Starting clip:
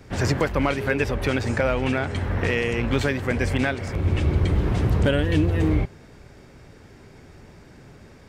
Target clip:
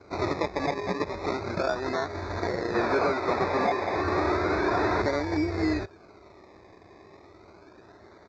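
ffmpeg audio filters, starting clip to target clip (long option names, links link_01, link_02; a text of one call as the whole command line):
ffmpeg -i in.wav -filter_complex "[0:a]lowshelf=frequency=230:gain=-6.5,aecho=1:1:3:0.66,alimiter=limit=-14dB:level=0:latency=1:release=348,acrusher=samples=24:mix=1:aa=0.000001:lfo=1:lforange=14.4:lforate=0.33,asettb=1/sr,asplit=3[link_01][link_02][link_03];[link_01]atrim=end=2.744[link_04];[link_02]atrim=start=2.74:end=5.02,asetpts=PTS-STARTPTS,afade=type=in:duration=0.004:curve=qsin,afade=type=out:start_time=2.276:duration=0.004:curve=qsin,asplit=2[link_05][link_06];[link_06]highpass=frequency=720:poles=1,volume=21dB,asoftclip=type=tanh:threshold=-14dB[link_07];[link_05][link_07]amix=inputs=2:normalize=0,lowpass=frequency=3000:poles=1,volume=-6dB[link_08];[link_03]atrim=start=5.016[link_09];[link_04][link_08]acrossfade=duration=0.004:curve1=hsin:curve2=qsin[link_10];[link_10][link_09]acrossfade=duration=0.004:curve1=qsin:curve2=hsin,asuperstop=centerf=3000:order=20:qfactor=3.3,highpass=110,equalizer=frequency=130:width_type=q:width=4:gain=-7,equalizer=frequency=250:width_type=q:width=4:gain=-10,equalizer=frequency=3100:width_type=q:width=4:gain=-10,lowpass=frequency=4900:width=0.5412,lowpass=frequency=4900:width=1.3066" -ar 16000 -c:a pcm_mulaw out.wav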